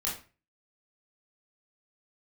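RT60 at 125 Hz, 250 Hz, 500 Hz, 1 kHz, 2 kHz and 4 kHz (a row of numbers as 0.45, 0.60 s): 0.50, 0.40, 0.35, 0.35, 0.35, 0.30 s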